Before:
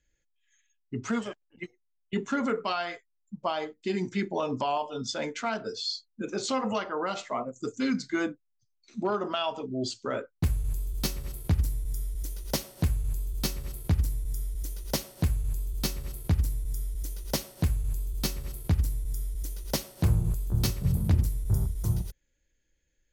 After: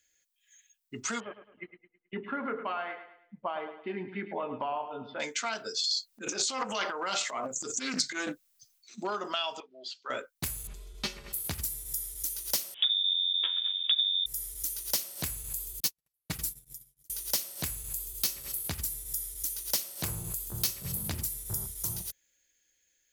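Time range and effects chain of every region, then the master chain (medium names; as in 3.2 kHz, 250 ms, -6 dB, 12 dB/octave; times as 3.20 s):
1.20–5.20 s: Gaussian low-pass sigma 4.3 samples + feedback delay 107 ms, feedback 39%, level -11 dB
5.79–8.98 s: transient shaper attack -6 dB, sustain +12 dB + loudspeaker Doppler distortion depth 0.21 ms
9.60–10.10 s: high-pass 910 Hz + distance through air 330 m
10.67–11.33 s: low-pass 2.8 kHz + comb 4.9 ms, depth 81%
12.74–14.26 s: dynamic bell 2.1 kHz, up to +6 dB, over -58 dBFS, Q 3.3 + frequency inversion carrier 3.6 kHz
15.80–17.10 s: gate -28 dBFS, range -54 dB + comb 6.3 ms, depth 68%
whole clip: tilt EQ +4 dB/octave; compression 2.5:1, threshold -30 dBFS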